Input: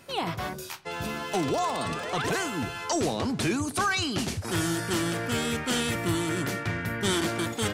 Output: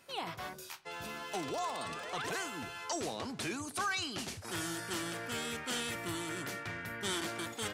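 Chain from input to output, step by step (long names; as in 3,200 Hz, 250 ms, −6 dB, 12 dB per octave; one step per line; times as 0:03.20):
low-shelf EQ 360 Hz −9 dB
level −7.5 dB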